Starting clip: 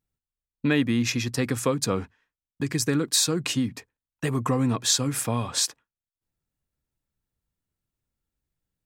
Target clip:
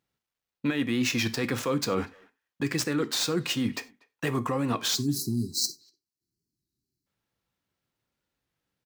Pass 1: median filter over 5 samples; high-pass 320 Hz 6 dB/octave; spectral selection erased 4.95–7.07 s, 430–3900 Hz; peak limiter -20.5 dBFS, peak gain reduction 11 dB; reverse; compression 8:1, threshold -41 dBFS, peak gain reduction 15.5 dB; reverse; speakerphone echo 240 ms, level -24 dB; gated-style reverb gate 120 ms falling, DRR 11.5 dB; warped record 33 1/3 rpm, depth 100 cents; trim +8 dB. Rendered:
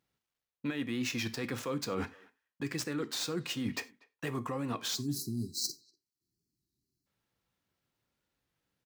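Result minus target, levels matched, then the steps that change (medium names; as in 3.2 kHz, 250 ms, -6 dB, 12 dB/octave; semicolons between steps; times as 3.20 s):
compression: peak gain reduction +8 dB
change: compression 8:1, threshold -32 dBFS, peak gain reduction 8 dB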